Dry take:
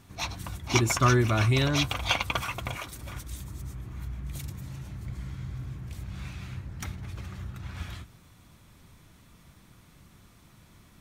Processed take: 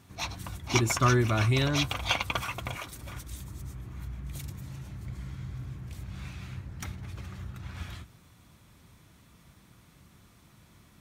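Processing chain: high-pass 44 Hz; trim -1.5 dB

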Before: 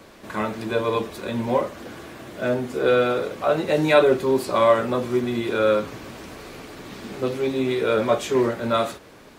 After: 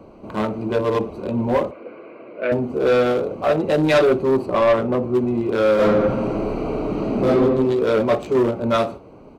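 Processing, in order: local Wiener filter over 25 samples; 4.46–5.15 s: treble shelf 2.4 kHz -8.5 dB; 5.75–7.30 s: reverb throw, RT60 1.3 s, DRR -11.5 dB; saturation -16 dBFS, distortion -13 dB; 1.71–2.52 s: cabinet simulation 430–3700 Hz, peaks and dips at 500 Hz +5 dB, 810 Hz -10 dB, 1.6 kHz +4 dB, 2.3 kHz +9 dB, 3.4 kHz -8 dB; feedback delay 61 ms, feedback 40%, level -23 dB; trim +5.5 dB

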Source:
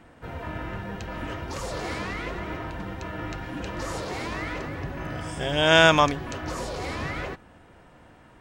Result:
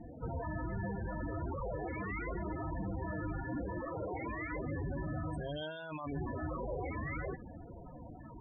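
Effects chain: compressor with a negative ratio -32 dBFS, ratio -1; saturation -21 dBFS, distortion -22 dB; peak limiter -32 dBFS, peak gain reduction 10 dB; 3.40–4.52 s: hum notches 50/100/150/200/250 Hz; loudest bins only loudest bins 16; trim +2.5 dB

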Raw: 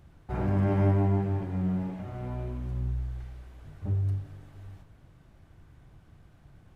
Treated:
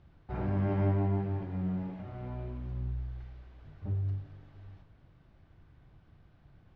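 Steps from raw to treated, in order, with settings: low-pass 4.9 kHz 24 dB/octave; trim -4.5 dB

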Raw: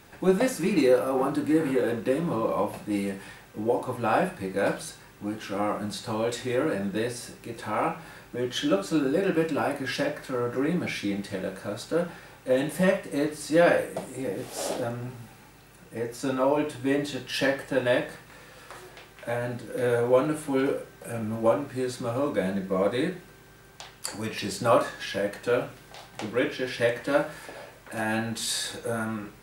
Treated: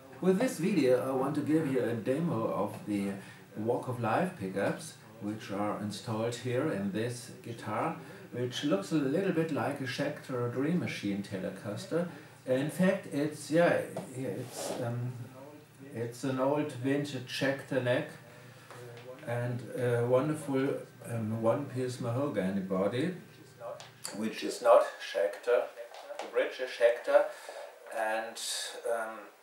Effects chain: high-pass sweep 120 Hz -> 590 Hz, 23.98–24.71 s; reverse echo 1047 ms -21 dB; crackle 29 per s -53 dBFS; trim -6.5 dB

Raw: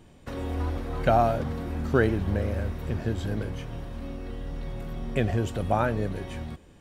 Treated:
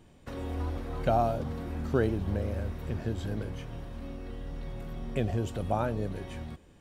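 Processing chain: dynamic bell 1.8 kHz, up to -7 dB, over -44 dBFS, Q 1.4; trim -4 dB

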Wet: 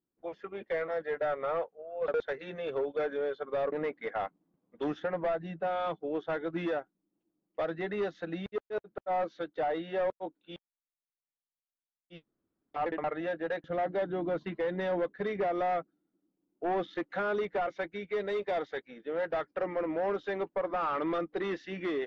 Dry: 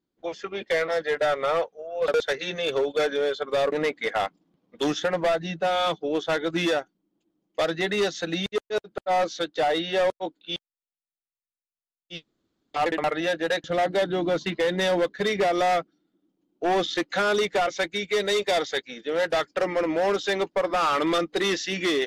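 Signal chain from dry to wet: low-pass 1.7 kHz 12 dB/octave; trim -7.5 dB

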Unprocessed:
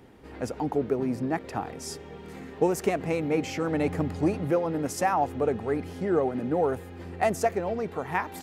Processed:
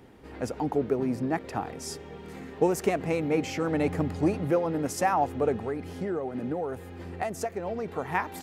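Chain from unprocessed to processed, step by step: 5.59–7.88 s: compression 6:1, threshold -28 dBFS, peak gain reduction 9.5 dB

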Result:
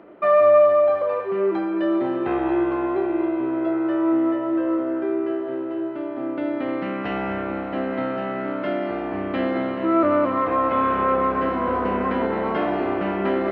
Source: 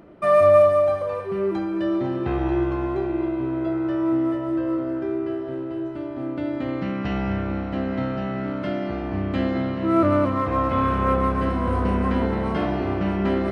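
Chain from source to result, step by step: three-band isolator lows -19 dB, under 250 Hz, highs -21 dB, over 3.4 kHz; in parallel at +1 dB: peak limiter -18 dBFS, peak gain reduction 11 dB; on the sum: trim -2.5 dB

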